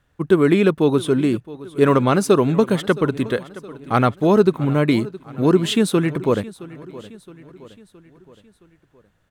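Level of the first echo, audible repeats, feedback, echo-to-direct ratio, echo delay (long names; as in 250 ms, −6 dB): −18.5 dB, 3, 51%, −17.0 dB, 668 ms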